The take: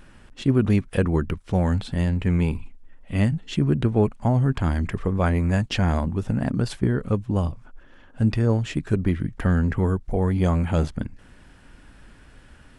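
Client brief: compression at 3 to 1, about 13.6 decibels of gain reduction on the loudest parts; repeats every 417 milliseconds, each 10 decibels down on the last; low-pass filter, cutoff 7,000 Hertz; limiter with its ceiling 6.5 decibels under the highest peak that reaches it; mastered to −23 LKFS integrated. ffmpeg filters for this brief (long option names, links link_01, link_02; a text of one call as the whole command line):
ffmpeg -i in.wav -af "lowpass=7000,acompressor=threshold=-35dB:ratio=3,alimiter=level_in=2.5dB:limit=-24dB:level=0:latency=1,volume=-2.5dB,aecho=1:1:417|834|1251|1668:0.316|0.101|0.0324|0.0104,volume=14dB" out.wav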